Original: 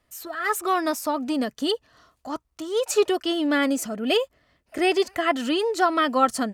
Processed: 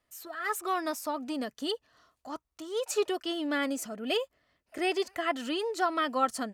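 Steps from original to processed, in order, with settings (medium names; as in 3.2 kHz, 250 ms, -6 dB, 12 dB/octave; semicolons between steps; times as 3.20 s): bass shelf 240 Hz -5.5 dB; trim -7 dB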